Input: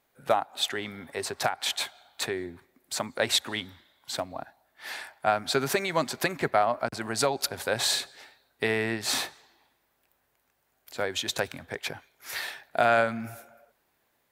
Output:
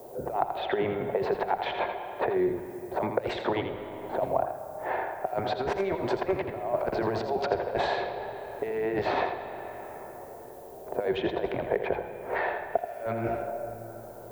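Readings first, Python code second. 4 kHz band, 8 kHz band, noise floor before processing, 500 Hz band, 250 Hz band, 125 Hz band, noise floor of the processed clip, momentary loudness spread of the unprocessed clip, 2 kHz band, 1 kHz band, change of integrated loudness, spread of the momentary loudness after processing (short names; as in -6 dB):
-12.5 dB, under -20 dB, -73 dBFS, +2.5 dB, +2.5 dB, +1.0 dB, -44 dBFS, 13 LU, -5.0 dB, 0.0 dB, -2.0 dB, 10 LU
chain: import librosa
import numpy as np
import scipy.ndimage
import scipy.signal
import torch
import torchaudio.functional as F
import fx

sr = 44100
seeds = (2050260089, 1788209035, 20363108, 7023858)

y = fx.octave_divider(x, sr, octaves=1, level_db=0.0)
y = scipy.signal.sosfilt(scipy.signal.cheby1(2, 1.0, 2100.0, 'lowpass', fs=sr, output='sos'), y)
y = fx.notch(y, sr, hz=810.0, q=12.0)
y = fx.env_lowpass(y, sr, base_hz=580.0, full_db=-24.5)
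y = 10.0 ** (-15.0 / 20.0) * np.tanh(y / 10.0 ** (-15.0 / 20.0))
y = fx.low_shelf(y, sr, hz=65.0, db=-8.0)
y = fx.over_compress(y, sr, threshold_db=-35.0, ratio=-0.5)
y = fx.dmg_noise_colour(y, sr, seeds[0], colour='violet', level_db=-67.0)
y = fx.band_shelf(y, sr, hz=570.0, db=13.5, octaves=1.7)
y = y + 10.0 ** (-8.0 / 20.0) * np.pad(y, (int(82 * sr / 1000.0), 0))[:len(y)]
y = fx.rev_freeverb(y, sr, rt60_s=2.2, hf_ratio=0.6, predelay_ms=20, drr_db=11.5)
y = fx.band_squash(y, sr, depth_pct=70)
y = y * 10.0 ** (-2.0 / 20.0)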